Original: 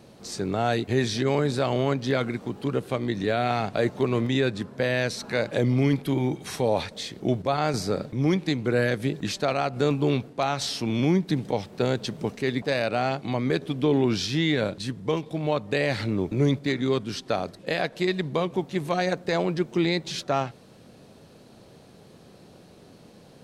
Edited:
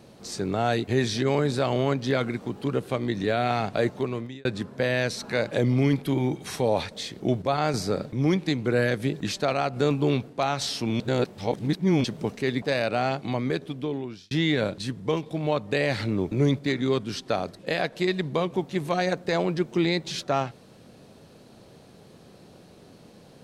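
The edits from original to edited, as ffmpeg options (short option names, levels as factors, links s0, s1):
-filter_complex "[0:a]asplit=5[s0][s1][s2][s3][s4];[s0]atrim=end=4.45,asetpts=PTS-STARTPTS,afade=t=out:st=3.82:d=0.63[s5];[s1]atrim=start=4.45:end=11.002,asetpts=PTS-STARTPTS,afade=t=in:d=0.004:c=hsin[s6];[s2]atrim=start=10.998:end=12.042,asetpts=PTS-STARTPTS,areverse[s7];[s3]atrim=start=12.038:end=14.31,asetpts=PTS-STARTPTS,afade=t=out:st=1.232:d=1.04[s8];[s4]atrim=start=14.31,asetpts=PTS-STARTPTS,afade=t=in:d=0.004:c=hsin[s9];[s5][s6]concat=n=2:v=0:a=1[s10];[s10][s7]acrossfade=d=0.004:c1=hsin:c2=hsin[s11];[s8][s9]concat=n=2:v=0:a=1[s12];[s11][s12]acrossfade=d=0.004:c1=hsin:c2=hsin"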